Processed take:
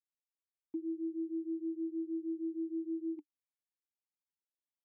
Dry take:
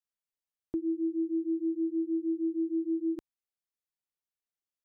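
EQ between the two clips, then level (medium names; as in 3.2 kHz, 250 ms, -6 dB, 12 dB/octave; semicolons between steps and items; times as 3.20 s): vowel filter u; -2.0 dB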